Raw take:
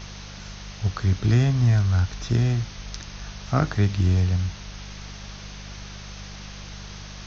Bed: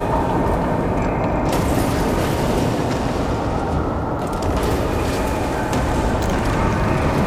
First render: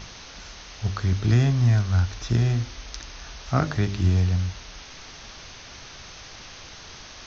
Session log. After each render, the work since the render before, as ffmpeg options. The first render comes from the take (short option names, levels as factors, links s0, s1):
-af "bandreject=f=50:t=h:w=4,bandreject=f=100:t=h:w=4,bandreject=f=150:t=h:w=4,bandreject=f=200:t=h:w=4,bandreject=f=250:t=h:w=4,bandreject=f=300:t=h:w=4,bandreject=f=350:t=h:w=4,bandreject=f=400:t=h:w=4,bandreject=f=450:t=h:w=4,bandreject=f=500:t=h:w=4,bandreject=f=550:t=h:w=4,bandreject=f=600:t=h:w=4"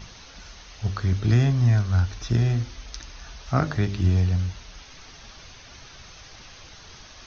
-af "afftdn=nr=6:nf=-43"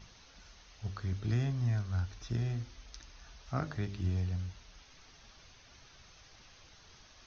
-af "volume=0.237"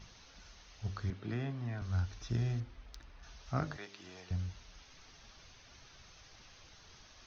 -filter_complex "[0:a]asettb=1/sr,asplit=3[s0][s1][s2];[s0]atrim=end=1.104[s3];[s1]atrim=start=1.1:end=1.82,asetpts=PTS-STARTPTS,afade=t=in:d=0.004:c=qsin,afade=t=out:st=0.716:d=0.004:c=qsin,highpass=190,lowpass=3100[s4];[s2]atrim=start=1.816[s5];[s3][s4]acrossfade=d=0.004:c1=hsin:c2=qsin[s6];[s6][s5]acrossfade=d=0.004:c1=qsin:c2=hsin,asettb=1/sr,asplit=3[s7][s8][s9];[s7]atrim=end=2.604[s10];[s8]atrim=start=2.6:end=3.23,asetpts=PTS-STARTPTS,afade=t=in:d=0.004:c=qsin,afade=t=out:st=0.626:d=0.004:c=qsin,adynamicsmooth=sensitivity=7.5:basefreq=2700[s11];[s9]atrim=start=3.226[s12];[s10][s11]acrossfade=d=0.004:c1=hsin:c2=qsin[s13];[s13][s12]acrossfade=d=0.004:c1=qsin:c2=hsin,asettb=1/sr,asplit=3[s14][s15][s16];[s14]atrim=end=3.774[s17];[s15]atrim=start=3.77:end=4.31,asetpts=PTS-STARTPTS,afade=t=in:d=0.004:c=qsin,afade=t=out:st=0.536:d=0.004:c=qsin,highpass=570[s18];[s16]atrim=start=4.306[s19];[s17][s18]acrossfade=d=0.004:c1=hsin:c2=qsin[s20];[s20][s19]acrossfade=d=0.004:c1=qsin:c2=hsin"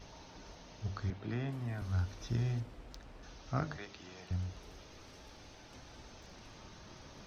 -filter_complex "[1:a]volume=0.0141[s0];[0:a][s0]amix=inputs=2:normalize=0"